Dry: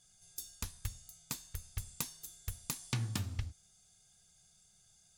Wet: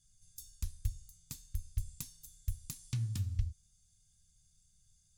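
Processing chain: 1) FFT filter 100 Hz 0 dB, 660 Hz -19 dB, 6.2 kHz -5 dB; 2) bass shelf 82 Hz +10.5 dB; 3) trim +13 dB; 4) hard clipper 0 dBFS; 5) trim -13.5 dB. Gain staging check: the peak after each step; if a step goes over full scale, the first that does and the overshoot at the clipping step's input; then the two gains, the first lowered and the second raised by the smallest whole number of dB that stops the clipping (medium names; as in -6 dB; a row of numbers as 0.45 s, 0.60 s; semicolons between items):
-22.0 dBFS, -19.0 dBFS, -6.0 dBFS, -6.0 dBFS, -19.5 dBFS; nothing clips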